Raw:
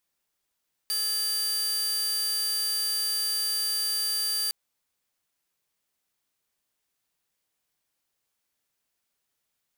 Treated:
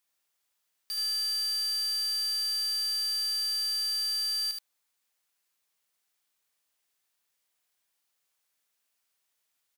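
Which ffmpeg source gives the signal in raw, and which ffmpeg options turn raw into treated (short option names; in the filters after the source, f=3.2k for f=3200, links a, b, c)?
-f lavfi -i "aevalsrc='0.0708*(2*mod(4710*t,1)-1)':d=3.61:s=44100"
-filter_complex "[0:a]lowshelf=f=420:g=-11,asoftclip=type=tanh:threshold=-31.5dB,asplit=2[a][b];[b]aecho=0:1:76:0.631[c];[a][c]amix=inputs=2:normalize=0"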